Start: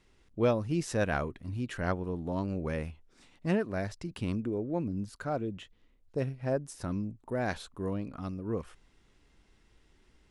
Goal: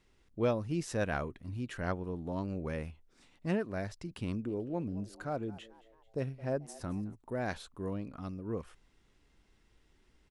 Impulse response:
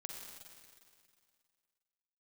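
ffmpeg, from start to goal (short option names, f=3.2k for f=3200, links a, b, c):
-filter_complex "[0:a]asplit=3[a][b][c];[a]afade=t=out:st=4.47:d=0.02[d];[b]asplit=4[e][f][g][h];[f]adelay=219,afreqshift=110,volume=-20dB[i];[g]adelay=438,afreqshift=220,volume=-26.7dB[j];[h]adelay=657,afreqshift=330,volume=-33.5dB[k];[e][i][j][k]amix=inputs=4:normalize=0,afade=t=in:st=4.47:d=0.02,afade=t=out:st=7.14:d=0.02[l];[c]afade=t=in:st=7.14:d=0.02[m];[d][l][m]amix=inputs=3:normalize=0,volume=-3.5dB"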